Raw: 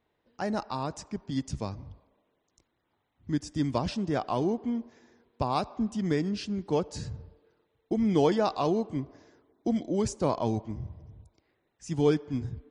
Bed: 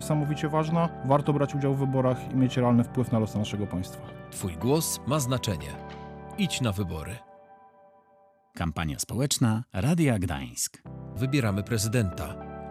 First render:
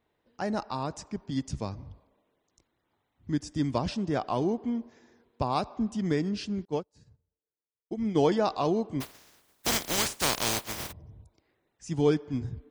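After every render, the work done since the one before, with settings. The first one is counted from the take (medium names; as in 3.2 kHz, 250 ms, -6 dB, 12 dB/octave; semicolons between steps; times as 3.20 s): 6.65–8.18 s: upward expansion 2.5:1, over -44 dBFS; 9.00–10.91 s: spectral contrast reduction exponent 0.2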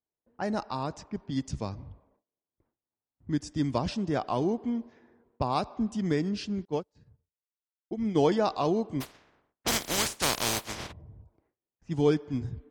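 level-controlled noise filter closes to 1.1 kHz, open at -27.5 dBFS; gate with hold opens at -60 dBFS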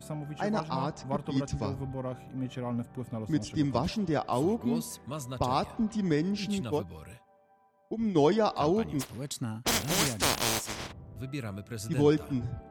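add bed -11.5 dB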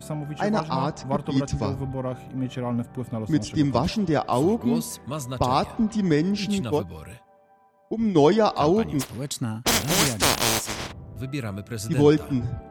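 trim +6.5 dB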